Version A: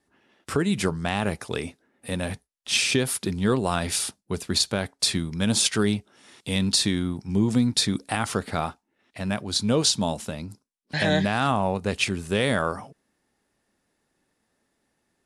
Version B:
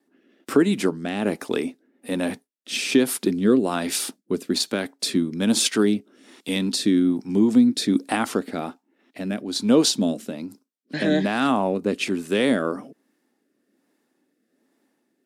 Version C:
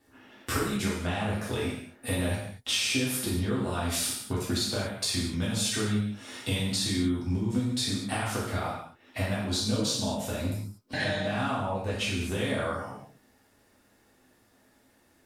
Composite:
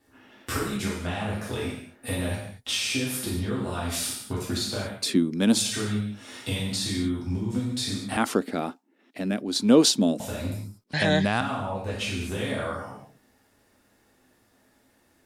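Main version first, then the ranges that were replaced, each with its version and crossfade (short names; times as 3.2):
C
5.02–5.61 from B, crossfade 0.16 s
8.17–10.2 from B
10.84–11.41 from A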